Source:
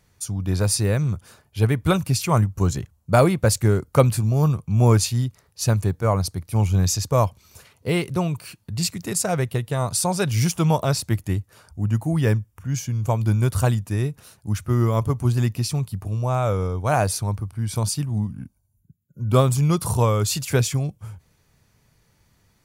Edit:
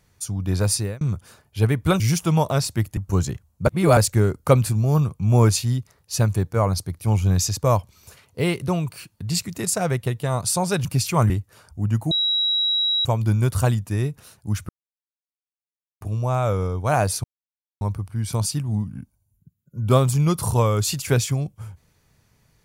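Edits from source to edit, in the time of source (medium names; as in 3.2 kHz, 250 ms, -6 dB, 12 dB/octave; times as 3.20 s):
0.73–1.01 s: fade out
2.00–2.45 s: swap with 10.33–11.30 s
3.15–3.45 s: reverse
12.11–13.05 s: bleep 3.87 kHz -18 dBFS
14.69–16.01 s: mute
17.24 s: insert silence 0.57 s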